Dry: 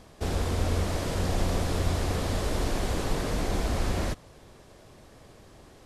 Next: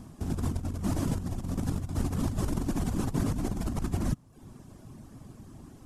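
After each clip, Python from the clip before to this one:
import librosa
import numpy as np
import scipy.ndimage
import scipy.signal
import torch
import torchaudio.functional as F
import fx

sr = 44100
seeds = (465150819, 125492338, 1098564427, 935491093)

y = fx.dereverb_blind(x, sr, rt60_s=0.63)
y = fx.graphic_eq_10(y, sr, hz=(125, 250, 500, 2000, 4000), db=(6, 9, -11, -8, -9))
y = fx.over_compress(y, sr, threshold_db=-29.0, ratio=-0.5)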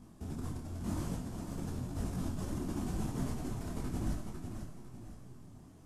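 y = fx.echo_feedback(x, sr, ms=501, feedback_pct=31, wet_db=-5.5)
y = fx.rev_schroeder(y, sr, rt60_s=1.1, comb_ms=25, drr_db=4.0)
y = fx.detune_double(y, sr, cents=34)
y = y * 10.0 ** (-5.5 / 20.0)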